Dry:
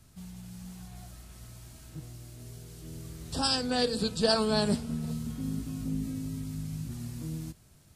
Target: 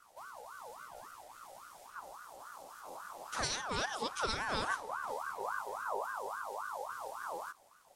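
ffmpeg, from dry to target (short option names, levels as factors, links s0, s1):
-af "alimiter=limit=0.119:level=0:latency=1:release=484,aeval=exprs='val(0)*sin(2*PI*1000*n/s+1000*0.35/3.6*sin(2*PI*3.6*n/s))':c=same,volume=0.75"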